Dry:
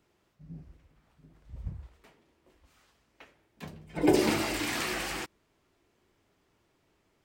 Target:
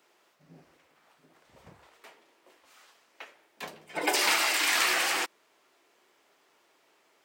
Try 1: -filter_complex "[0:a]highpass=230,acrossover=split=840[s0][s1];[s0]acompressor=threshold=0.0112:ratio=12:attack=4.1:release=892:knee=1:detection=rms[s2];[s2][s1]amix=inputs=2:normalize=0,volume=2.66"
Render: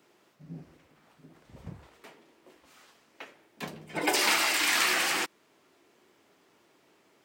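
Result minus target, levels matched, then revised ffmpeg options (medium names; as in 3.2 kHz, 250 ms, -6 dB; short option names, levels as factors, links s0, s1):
250 Hz band +4.0 dB
-filter_complex "[0:a]highpass=520,acrossover=split=840[s0][s1];[s0]acompressor=threshold=0.0112:ratio=12:attack=4.1:release=892:knee=1:detection=rms[s2];[s2][s1]amix=inputs=2:normalize=0,volume=2.66"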